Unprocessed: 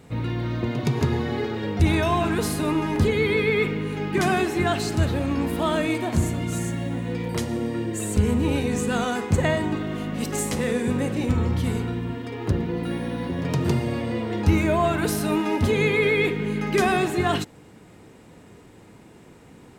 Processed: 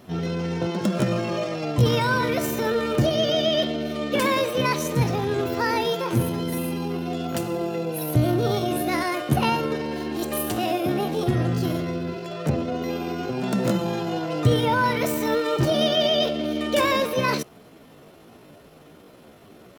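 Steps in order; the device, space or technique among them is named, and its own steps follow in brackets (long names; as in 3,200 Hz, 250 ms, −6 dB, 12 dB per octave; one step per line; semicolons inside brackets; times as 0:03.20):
chipmunk voice (pitch shifter +6.5 semitones)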